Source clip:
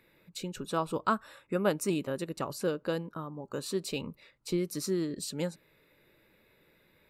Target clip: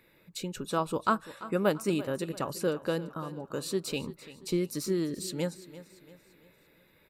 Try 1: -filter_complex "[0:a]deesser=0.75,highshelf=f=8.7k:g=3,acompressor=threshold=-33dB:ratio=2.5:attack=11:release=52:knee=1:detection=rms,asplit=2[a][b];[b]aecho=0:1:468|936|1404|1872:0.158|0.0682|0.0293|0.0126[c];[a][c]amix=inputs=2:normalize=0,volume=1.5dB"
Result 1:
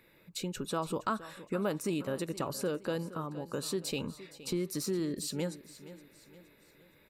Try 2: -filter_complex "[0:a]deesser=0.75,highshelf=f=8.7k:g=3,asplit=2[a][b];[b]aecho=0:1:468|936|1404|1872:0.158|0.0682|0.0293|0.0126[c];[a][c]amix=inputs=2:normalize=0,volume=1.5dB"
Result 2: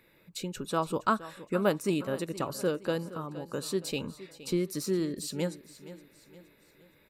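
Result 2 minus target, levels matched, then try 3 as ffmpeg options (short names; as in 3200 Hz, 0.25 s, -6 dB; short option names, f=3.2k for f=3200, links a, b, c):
echo 0.127 s late
-filter_complex "[0:a]deesser=0.75,highshelf=f=8.7k:g=3,asplit=2[a][b];[b]aecho=0:1:341|682|1023|1364:0.158|0.0682|0.0293|0.0126[c];[a][c]amix=inputs=2:normalize=0,volume=1.5dB"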